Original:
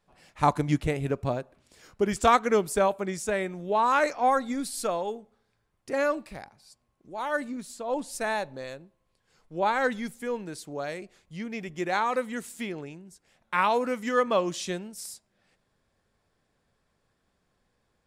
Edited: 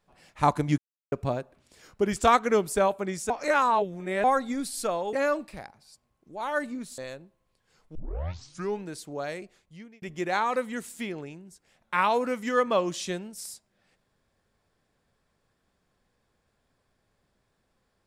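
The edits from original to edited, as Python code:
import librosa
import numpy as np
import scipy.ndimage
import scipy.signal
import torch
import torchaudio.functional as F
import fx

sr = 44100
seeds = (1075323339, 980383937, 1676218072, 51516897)

y = fx.edit(x, sr, fx.silence(start_s=0.78, length_s=0.34),
    fx.reverse_span(start_s=3.3, length_s=0.94),
    fx.cut(start_s=5.13, length_s=0.78),
    fx.cut(start_s=7.76, length_s=0.82),
    fx.tape_start(start_s=9.55, length_s=0.89),
    fx.fade_out_span(start_s=10.99, length_s=0.63), tone=tone)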